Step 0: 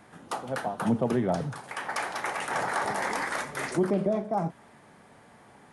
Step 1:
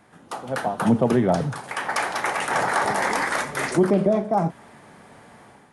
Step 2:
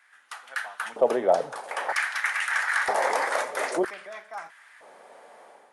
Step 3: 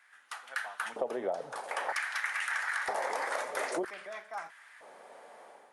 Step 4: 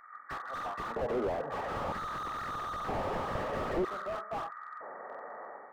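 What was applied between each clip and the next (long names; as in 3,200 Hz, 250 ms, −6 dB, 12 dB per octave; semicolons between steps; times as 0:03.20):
automatic gain control gain up to 8.5 dB; level −1.5 dB
auto-filter high-pass square 0.52 Hz 540–1,700 Hz; level −4.5 dB
downward compressor 10 to 1, threshold −27 dBFS, peak gain reduction 12.5 dB; level −2.5 dB
hearing-aid frequency compression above 1,100 Hz 4 to 1; slew-rate limiting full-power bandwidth 7.5 Hz; level +7.5 dB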